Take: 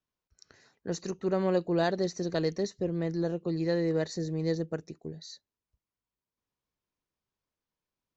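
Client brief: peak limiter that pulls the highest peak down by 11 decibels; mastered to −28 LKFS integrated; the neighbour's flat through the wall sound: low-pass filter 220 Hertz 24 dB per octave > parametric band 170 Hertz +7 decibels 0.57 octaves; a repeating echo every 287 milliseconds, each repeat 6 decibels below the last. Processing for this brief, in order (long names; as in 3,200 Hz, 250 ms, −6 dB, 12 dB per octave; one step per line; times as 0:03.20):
brickwall limiter −25.5 dBFS
low-pass filter 220 Hz 24 dB per octave
parametric band 170 Hz +7 dB 0.57 octaves
repeating echo 287 ms, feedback 50%, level −6 dB
level +5 dB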